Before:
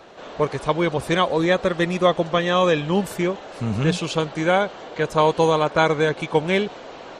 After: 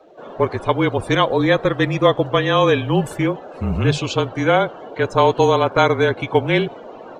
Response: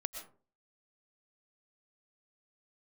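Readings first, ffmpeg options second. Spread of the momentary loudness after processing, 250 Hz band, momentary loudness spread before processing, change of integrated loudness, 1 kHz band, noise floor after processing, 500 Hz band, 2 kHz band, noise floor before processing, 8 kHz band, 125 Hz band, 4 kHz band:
8 LU, +2.5 dB, 8 LU, +3.0 dB, +3.0 dB, -38 dBFS, +3.0 dB, +2.5 dB, -39 dBFS, -0.5 dB, +5.0 dB, +2.5 dB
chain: -af "afreqshift=-30,acrusher=bits=8:mode=log:mix=0:aa=0.000001,afftdn=nr=17:nf=-39,volume=1.41"

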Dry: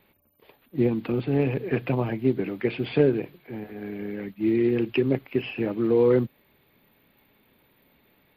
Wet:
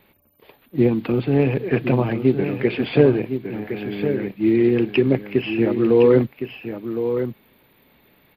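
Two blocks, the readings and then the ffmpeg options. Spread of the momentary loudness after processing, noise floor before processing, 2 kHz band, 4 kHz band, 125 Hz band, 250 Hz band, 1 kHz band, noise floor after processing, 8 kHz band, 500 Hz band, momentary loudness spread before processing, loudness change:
12 LU, -65 dBFS, +6.0 dB, +6.0 dB, +6.0 dB, +6.0 dB, +6.0 dB, -58 dBFS, no reading, +6.0 dB, 13 LU, +5.5 dB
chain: -af "aecho=1:1:1062:0.376,volume=1.88"

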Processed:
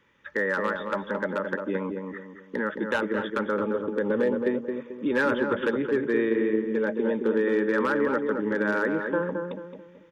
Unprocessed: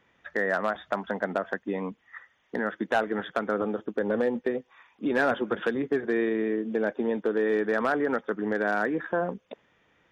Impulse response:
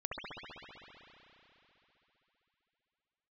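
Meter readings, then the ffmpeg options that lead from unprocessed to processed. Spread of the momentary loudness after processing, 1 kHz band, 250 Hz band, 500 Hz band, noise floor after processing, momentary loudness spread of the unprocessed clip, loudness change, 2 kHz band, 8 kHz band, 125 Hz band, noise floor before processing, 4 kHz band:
9 LU, -1.0 dB, +2.5 dB, +2.0 dB, -51 dBFS, 8 LU, +1.5 dB, +1.5 dB, no reading, +2.5 dB, -67 dBFS, +1.0 dB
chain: -filter_complex "[0:a]asuperstop=centerf=710:order=20:qfactor=4,asplit=2[s0][s1];[s1]adelay=219,lowpass=f=1200:p=1,volume=0.631,asplit=2[s2][s3];[s3]adelay=219,lowpass=f=1200:p=1,volume=0.4,asplit=2[s4][s5];[s5]adelay=219,lowpass=f=1200:p=1,volume=0.4,asplit=2[s6][s7];[s7]adelay=219,lowpass=f=1200:p=1,volume=0.4,asplit=2[s8][s9];[s9]adelay=219,lowpass=f=1200:p=1,volume=0.4[s10];[s2][s4][s6][s8][s10]amix=inputs=5:normalize=0[s11];[s0][s11]amix=inputs=2:normalize=0,volume=1.12"

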